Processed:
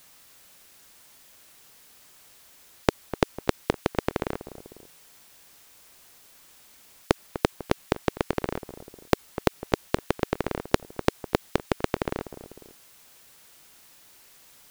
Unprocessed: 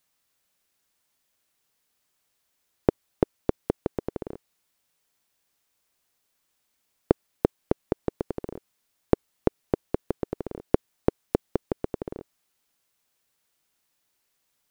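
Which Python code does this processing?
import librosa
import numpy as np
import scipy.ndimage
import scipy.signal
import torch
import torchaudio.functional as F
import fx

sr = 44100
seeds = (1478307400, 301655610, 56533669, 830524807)

y = fx.echo_feedback(x, sr, ms=249, feedback_pct=33, wet_db=-24.0)
y = fx.spectral_comp(y, sr, ratio=2.0)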